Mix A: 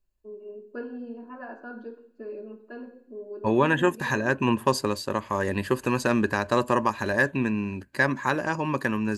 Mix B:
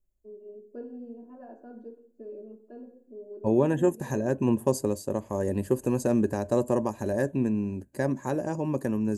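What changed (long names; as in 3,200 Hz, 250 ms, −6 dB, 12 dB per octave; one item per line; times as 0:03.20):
first voice −4.0 dB
master: add flat-topped bell 2,200 Hz −16 dB 2.6 octaves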